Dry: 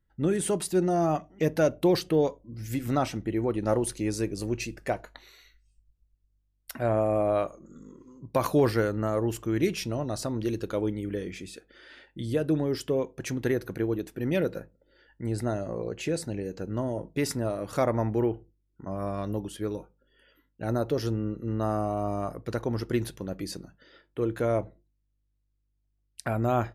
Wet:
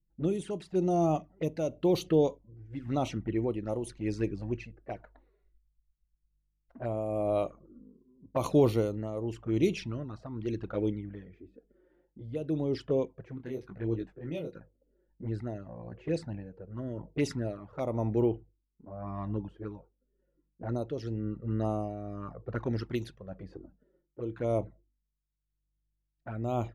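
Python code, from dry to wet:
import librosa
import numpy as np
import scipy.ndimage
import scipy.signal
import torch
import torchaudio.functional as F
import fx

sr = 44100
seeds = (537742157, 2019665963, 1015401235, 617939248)

y = fx.env_lowpass(x, sr, base_hz=330.0, full_db=-21.0)
y = fx.high_shelf(y, sr, hz=2800.0, db=9.5, at=(22.6, 23.43))
y = fx.env_flanger(y, sr, rest_ms=6.0, full_db=-23.0)
y = y * (1.0 - 0.57 / 2.0 + 0.57 / 2.0 * np.cos(2.0 * np.pi * 0.93 * (np.arange(len(y)) / sr)))
y = fx.detune_double(y, sr, cents=fx.line((13.37, 30.0), (14.53, 17.0)), at=(13.37, 14.53), fade=0.02)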